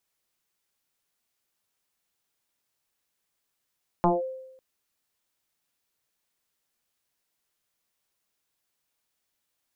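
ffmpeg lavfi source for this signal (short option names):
-f lavfi -i "aevalsrc='0.168*pow(10,-3*t/0.89)*sin(2*PI*522*t+3.1*clip(1-t/0.18,0,1)*sin(2*PI*0.33*522*t))':d=0.55:s=44100"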